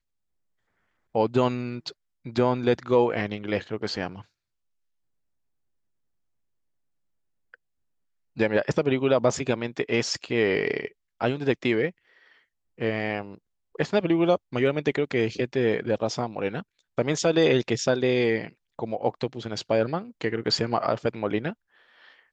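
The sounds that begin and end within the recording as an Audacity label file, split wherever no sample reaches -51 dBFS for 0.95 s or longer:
1.150000	4.250000	sound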